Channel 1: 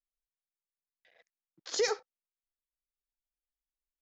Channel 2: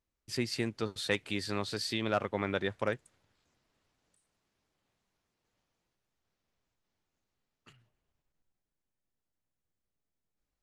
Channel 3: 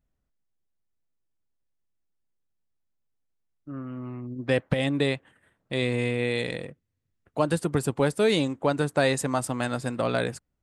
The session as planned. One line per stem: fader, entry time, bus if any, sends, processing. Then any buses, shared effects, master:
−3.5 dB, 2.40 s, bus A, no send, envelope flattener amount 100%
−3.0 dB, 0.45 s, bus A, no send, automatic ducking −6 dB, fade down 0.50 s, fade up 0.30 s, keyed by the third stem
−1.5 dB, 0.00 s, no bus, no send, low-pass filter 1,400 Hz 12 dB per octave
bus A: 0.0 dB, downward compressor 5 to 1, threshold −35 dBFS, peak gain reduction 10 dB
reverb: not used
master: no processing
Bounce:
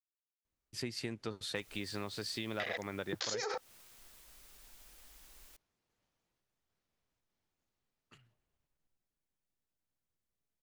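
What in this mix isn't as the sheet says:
stem 1: entry 2.40 s → 1.55 s
stem 3: muted

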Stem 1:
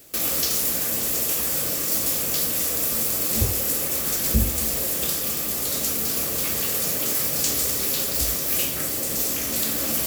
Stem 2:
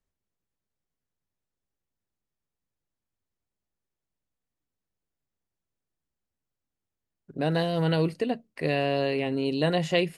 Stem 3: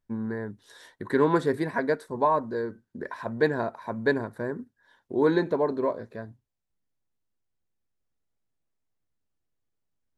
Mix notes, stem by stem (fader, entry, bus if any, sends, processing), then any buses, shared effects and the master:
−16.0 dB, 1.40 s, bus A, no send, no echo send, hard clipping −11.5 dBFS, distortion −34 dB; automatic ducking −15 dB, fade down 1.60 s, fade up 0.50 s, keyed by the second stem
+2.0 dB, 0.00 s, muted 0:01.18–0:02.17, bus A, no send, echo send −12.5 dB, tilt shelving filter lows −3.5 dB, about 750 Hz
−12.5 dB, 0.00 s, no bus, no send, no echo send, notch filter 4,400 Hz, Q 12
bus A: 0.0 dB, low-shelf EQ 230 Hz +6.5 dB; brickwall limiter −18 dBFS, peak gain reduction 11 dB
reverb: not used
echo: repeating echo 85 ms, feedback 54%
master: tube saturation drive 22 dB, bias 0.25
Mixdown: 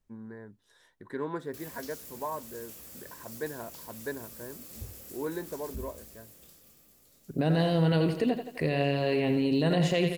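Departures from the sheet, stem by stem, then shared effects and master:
stem 1 −16.0 dB → −24.0 dB
stem 2: missing tilt shelving filter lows −3.5 dB, about 750 Hz
master: missing tube saturation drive 22 dB, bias 0.25

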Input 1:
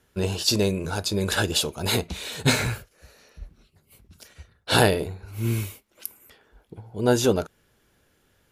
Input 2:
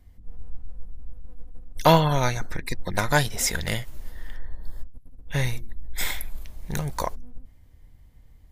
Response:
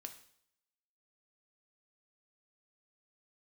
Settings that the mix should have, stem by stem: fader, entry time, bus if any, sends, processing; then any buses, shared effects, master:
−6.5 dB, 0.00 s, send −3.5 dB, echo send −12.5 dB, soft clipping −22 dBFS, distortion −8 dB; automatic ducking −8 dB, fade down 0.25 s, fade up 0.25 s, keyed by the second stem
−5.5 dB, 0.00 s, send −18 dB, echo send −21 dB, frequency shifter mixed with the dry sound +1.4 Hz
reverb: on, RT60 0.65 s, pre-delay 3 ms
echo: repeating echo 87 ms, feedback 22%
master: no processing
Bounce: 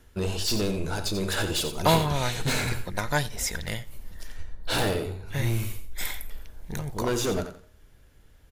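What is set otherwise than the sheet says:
stem 1 −6.5 dB → +2.0 dB
stem 2: missing frequency shifter mixed with the dry sound +1.4 Hz

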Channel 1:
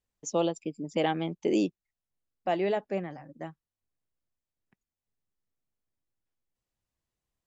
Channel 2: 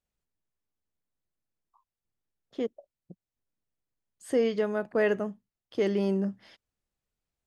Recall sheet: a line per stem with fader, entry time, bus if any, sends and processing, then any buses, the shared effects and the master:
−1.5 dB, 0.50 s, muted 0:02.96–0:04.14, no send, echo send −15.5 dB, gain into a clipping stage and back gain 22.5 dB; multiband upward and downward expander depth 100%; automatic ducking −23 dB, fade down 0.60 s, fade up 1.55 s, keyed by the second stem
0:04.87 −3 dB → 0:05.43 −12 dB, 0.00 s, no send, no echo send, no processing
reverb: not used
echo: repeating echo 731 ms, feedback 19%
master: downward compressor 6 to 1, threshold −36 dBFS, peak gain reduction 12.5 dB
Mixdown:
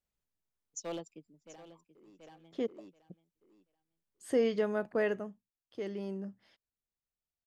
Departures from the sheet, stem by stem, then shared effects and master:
stem 1 −1.5 dB → −13.0 dB
master: missing downward compressor 6 to 1, threshold −36 dBFS, peak gain reduction 12.5 dB

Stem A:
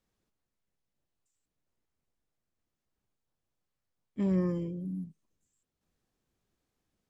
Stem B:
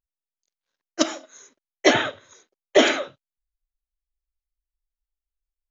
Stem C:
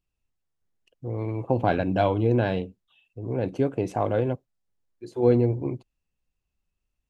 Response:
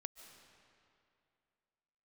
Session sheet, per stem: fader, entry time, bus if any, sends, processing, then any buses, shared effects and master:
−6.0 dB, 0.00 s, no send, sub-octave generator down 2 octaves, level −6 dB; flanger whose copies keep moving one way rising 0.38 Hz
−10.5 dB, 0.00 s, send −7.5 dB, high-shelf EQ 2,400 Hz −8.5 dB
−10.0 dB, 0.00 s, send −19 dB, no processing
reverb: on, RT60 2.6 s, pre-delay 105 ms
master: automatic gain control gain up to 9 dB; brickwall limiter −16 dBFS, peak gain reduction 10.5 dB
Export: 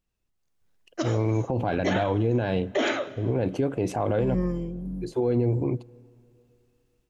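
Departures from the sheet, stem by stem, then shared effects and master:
stem A: missing flanger whose copies keep moving one way rising 0.38 Hz
stem C −10.0 dB → −2.5 dB

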